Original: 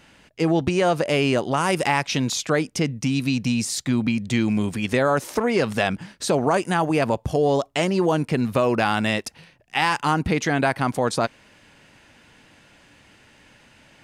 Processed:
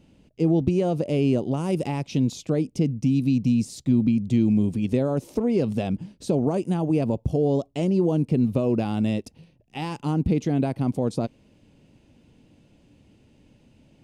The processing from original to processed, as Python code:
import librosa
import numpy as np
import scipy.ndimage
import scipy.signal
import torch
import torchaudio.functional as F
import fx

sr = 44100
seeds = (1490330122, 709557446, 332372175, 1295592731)

y = fx.curve_eq(x, sr, hz=(260.0, 510.0, 1700.0, 2600.0), db=(0, -6, -25, -15))
y = F.gain(torch.from_numpy(y), 2.0).numpy()